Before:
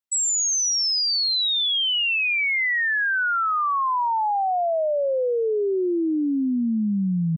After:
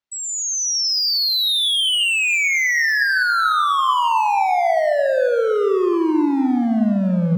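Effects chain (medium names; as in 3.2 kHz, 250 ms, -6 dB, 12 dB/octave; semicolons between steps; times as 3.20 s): Bessel low-pass 4.3 kHz, order 6; hard clipper -24.5 dBFS, distortion -13 dB; plate-style reverb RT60 0.95 s, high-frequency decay 0.3×, pre-delay 115 ms, DRR 5.5 dB; trim +7 dB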